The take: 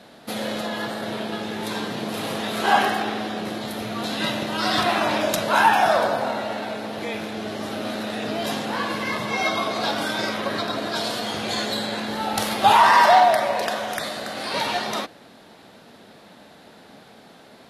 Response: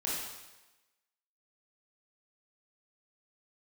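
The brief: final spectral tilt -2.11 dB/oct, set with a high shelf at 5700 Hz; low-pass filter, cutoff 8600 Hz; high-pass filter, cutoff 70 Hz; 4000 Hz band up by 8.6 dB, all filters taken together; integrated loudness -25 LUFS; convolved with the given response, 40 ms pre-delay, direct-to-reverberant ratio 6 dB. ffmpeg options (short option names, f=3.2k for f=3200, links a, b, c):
-filter_complex "[0:a]highpass=70,lowpass=8.6k,equalizer=f=4k:t=o:g=9,highshelf=f=5.7k:g=3.5,asplit=2[a][b];[1:a]atrim=start_sample=2205,adelay=40[c];[b][c]afir=irnorm=-1:irlink=0,volume=-11dB[d];[a][d]amix=inputs=2:normalize=0,volume=-6dB"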